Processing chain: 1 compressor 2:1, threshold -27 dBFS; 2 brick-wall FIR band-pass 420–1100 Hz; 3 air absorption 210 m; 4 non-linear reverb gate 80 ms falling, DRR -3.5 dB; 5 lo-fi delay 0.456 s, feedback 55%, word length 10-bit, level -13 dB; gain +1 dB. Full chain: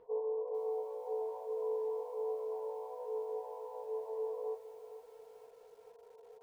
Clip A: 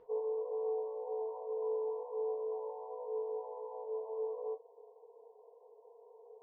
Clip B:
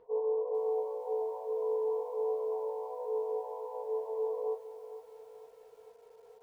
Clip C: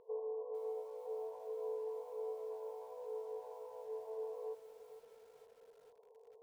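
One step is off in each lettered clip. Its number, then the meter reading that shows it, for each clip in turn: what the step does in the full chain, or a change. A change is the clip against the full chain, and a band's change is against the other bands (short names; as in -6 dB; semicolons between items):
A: 5, momentary loudness spread change +2 LU; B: 1, mean gain reduction 3.5 dB; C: 4, loudness change -5.0 LU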